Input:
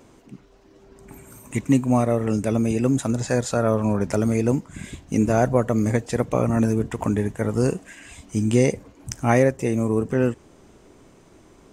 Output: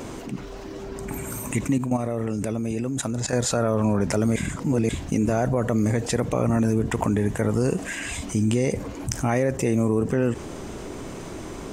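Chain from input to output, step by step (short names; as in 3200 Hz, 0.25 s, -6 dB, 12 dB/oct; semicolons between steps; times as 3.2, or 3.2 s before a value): 1.78–3.33 level quantiser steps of 17 dB; limiter -14 dBFS, peak gain reduction 9.5 dB; 4.36–4.89 reverse; fast leveller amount 50%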